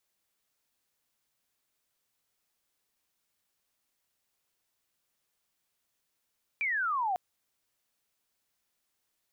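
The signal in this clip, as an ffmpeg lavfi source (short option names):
-f lavfi -i "aevalsrc='pow(10,(-27.5+0.5*t/0.55)/20)*sin(2*PI*2400*0.55/log(710/2400)*(exp(log(710/2400)*t/0.55)-1))':d=0.55:s=44100"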